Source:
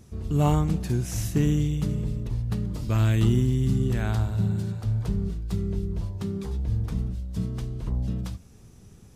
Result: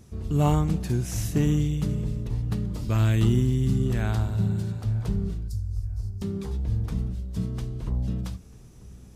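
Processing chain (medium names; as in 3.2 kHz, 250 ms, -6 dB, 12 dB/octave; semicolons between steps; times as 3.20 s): 5.48–6.22 s: Chebyshev band-stop 110–4800 Hz, order 4; filtered feedback delay 943 ms, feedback 29%, low-pass 2.4 kHz, level -21.5 dB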